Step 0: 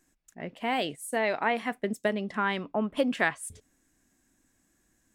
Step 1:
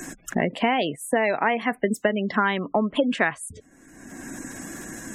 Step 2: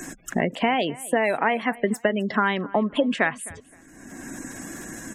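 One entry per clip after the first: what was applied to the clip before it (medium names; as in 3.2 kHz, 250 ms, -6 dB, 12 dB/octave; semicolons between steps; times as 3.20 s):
spectral gate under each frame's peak -25 dB strong; three bands compressed up and down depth 100%; trim +5.5 dB
feedback delay 260 ms, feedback 23%, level -21 dB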